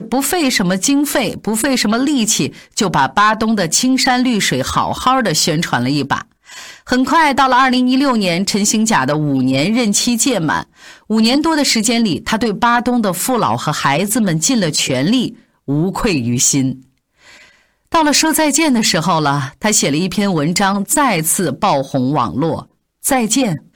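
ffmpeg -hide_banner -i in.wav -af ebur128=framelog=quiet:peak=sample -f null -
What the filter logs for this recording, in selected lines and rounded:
Integrated loudness:
  I:         -14.3 LUFS
  Threshold: -24.6 LUFS
Loudness range:
  LRA:         2.1 LU
  Threshold: -34.6 LUFS
  LRA low:   -15.6 LUFS
  LRA high:  -13.5 LUFS
Sample peak:
  Peak:       -2.9 dBFS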